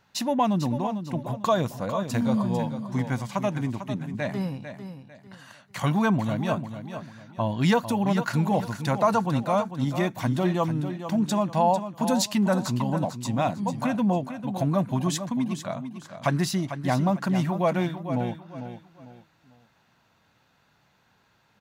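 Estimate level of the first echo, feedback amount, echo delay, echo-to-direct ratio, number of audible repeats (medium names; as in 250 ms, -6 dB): -10.0 dB, 31%, 448 ms, -9.5 dB, 3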